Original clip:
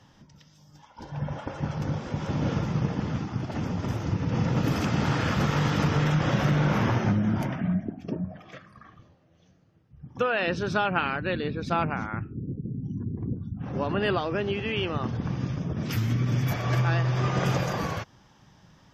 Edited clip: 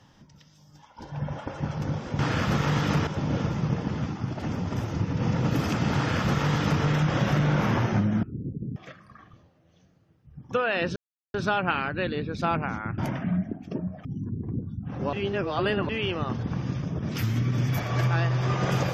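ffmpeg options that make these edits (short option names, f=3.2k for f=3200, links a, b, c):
-filter_complex "[0:a]asplit=10[a][b][c][d][e][f][g][h][i][j];[a]atrim=end=2.192[k];[b]atrim=start=5.078:end=5.962[l];[c]atrim=start=2.188:end=7.352[m];[d]atrim=start=12.258:end=12.792[n];[e]atrim=start=8.418:end=10.62,asetpts=PTS-STARTPTS,afade=t=out:st=2.198:d=0.004:c=hsin,apad=pad_dur=0.38[o];[f]atrim=start=10.62:end=12.262,asetpts=PTS-STARTPTS,afade=t=in:d=0.004:c=hsin[p];[g]atrim=start=7.348:end=8.422[q];[h]atrim=start=12.788:end=13.872[r];[i]atrim=start=13.868:end=14.632,asetpts=PTS-STARTPTS,areverse[s];[j]atrim=start=14.628[t];[k][l]acrossfade=d=0.004:c1=hsin:c2=hsin[u];[u][m]acrossfade=d=0.004:c1=hsin:c2=hsin[v];[v][n]acrossfade=d=0.004:c1=hsin:c2=hsin[w];[o][p]concat=n=2:v=0:a=1[x];[w][x]acrossfade=d=0.004:c1=hsin:c2=hsin[y];[y][q]acrossfade=d=0.004:c1=hsin:c2=hsin[z];[z][r]acrossfade=d=0.004:c1=hsin:c2=hsin[aa];[aa][s]acrossfade=d=0.004:c1=hsin:c2=hsin[ab];[ab][t]acrossfade=d=0.004:c1=hsin:c2=hsin"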